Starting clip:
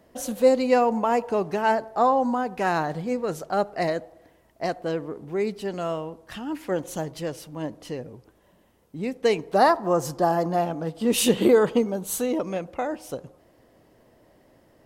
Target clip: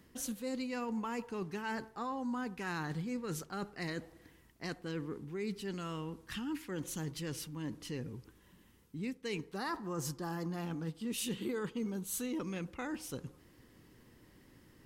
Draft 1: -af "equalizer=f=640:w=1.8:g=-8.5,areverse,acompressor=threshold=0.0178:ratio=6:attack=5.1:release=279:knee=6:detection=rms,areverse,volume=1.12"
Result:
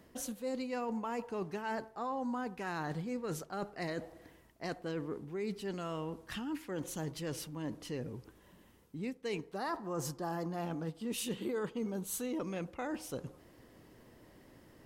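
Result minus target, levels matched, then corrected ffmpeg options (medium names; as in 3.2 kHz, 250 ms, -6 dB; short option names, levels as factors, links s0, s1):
500 Hz band +2.5 dB
-af "equalizer=f=640:w=1.8:g=-20.5,areverse,acompressor=threshold=0.0178:ratio=6:attack=5.1:release=279:knee=6:detection=rms,areverse,volume=1.12"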